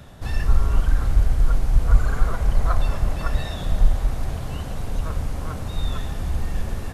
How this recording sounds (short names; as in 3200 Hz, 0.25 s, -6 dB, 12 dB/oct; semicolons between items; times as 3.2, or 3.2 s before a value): noise floor -31 dBFS; spectral tilt -6.0 dB/oct